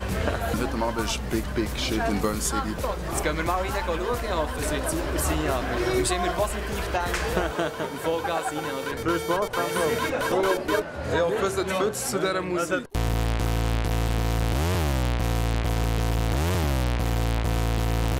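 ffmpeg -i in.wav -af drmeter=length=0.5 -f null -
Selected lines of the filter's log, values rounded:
Channel 1: DR: 9.6
Overall DR: 9.6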